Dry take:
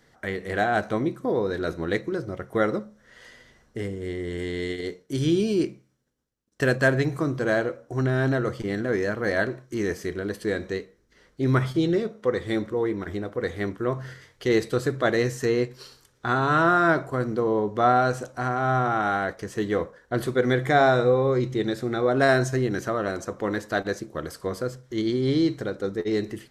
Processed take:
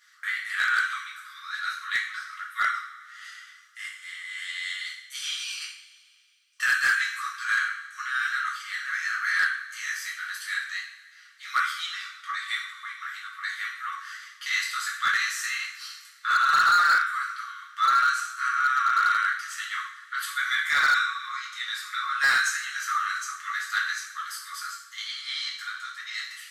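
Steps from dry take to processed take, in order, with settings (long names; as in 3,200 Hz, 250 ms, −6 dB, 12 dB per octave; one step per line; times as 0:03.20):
linear-phase brick-wall high-pass 1,100 Hz
coupled-rooms reverb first 0.55 s, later 2.3 s, DRR −5.5 dB
hard clipping −16.5 dBFS, distortion −13 dB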